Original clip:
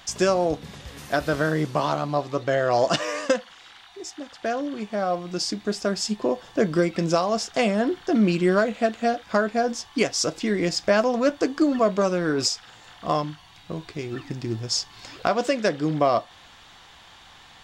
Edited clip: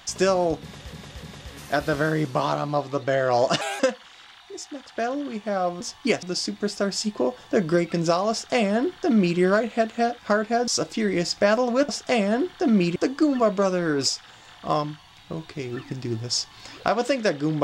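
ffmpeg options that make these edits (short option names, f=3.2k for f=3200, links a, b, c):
-filter_complex "[0:a]asplit=10[a][b][c][d][e][f][g][h][i][j];[a]atrim=end=0.932[k];[b]atrim=start=0.628:end=0.932[l];[c]atrim=start=0.628:end=3.014[m];[d]atrim=start=3.01:end=3.26,asetpts=PTS-STARTPTS,asetrate=59094,aresample=44100[n];[e]atrim=start=3.256:end=5.272[o];[f]atrim=start=9.718:end=10.142[p];[g]atrim=start=5.268:end=9.722[q];[h]atrim=start=10.138:end=11.352[r];[i]atrim=start=7.358:end=8.432[s];[j]atrim=start=11.348[t];[k][l]acrossfade=d=0.004:c1=hsin:c2=hsin[u];[u][m]acrossfade=d=0.004:c1=hsin:c2=hsin[v];[v][n]acrossfade=d=0.004:c1=hsin:c2=hsin[w];[w][o]acrossfade=d=0.004:c1=hsin:c2=hsin[x];[x][p]acrossfade=d=0.004:c1=hsin:c2=hsin[y];[y][q]acrossfade=d=0.004:c1=hsin:c2=hsin[z];[z][r]acrossfade=d=0.004:c1=hsin:c2=hsin[aa];[aa][s]acrossfade=d=0.004:c1=hsin:c2=hsin[ab];[ab][t]acrossfade=d=0.004:c1=hsin:c2=hsin"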